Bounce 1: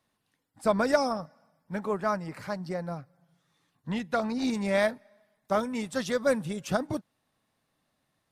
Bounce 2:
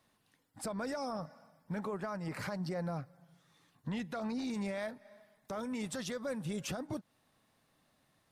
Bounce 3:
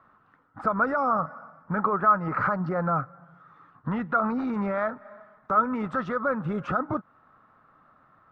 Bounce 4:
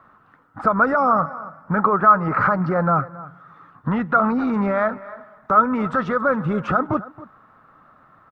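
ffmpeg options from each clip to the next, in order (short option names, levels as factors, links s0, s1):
-af "acompressor=threshold=0.02:ratio=16,alimiter=level_in=3.16:limit=0.0631:level=0:latency=1:release=18,volume=0.316,volume=1.5"
-af "lowpass=f=1300:t=q:w=9.1,volume=2.66"
-af "aecho=1:1:274:0.126,volume=2.24"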